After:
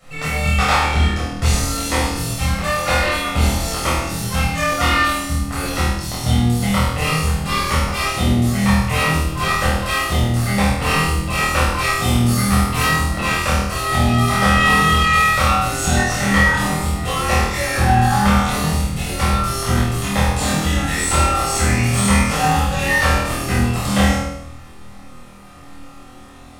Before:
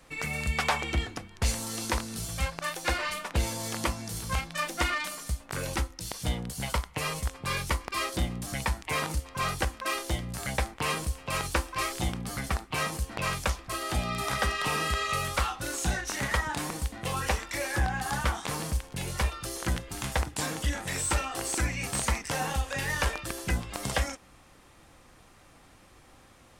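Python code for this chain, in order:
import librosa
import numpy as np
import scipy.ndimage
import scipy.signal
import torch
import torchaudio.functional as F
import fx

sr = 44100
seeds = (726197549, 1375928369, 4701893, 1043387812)

p1 = fx.high_shelf(x, sr, hz=fx.line((12.02, 4700.0), (12.84, 8300.0)), db=7.5, at=(12.02, 12.84), fade=0.02)
p2 = p1 + fx.room_flutter(p1, sr, wall_m=4.3, rt60_s=0.75, dry=0)
y = fx.room_shoebox(p2, sr, seeds[0], volume_m3=830.0, walls='furnished', distance_m=6.6)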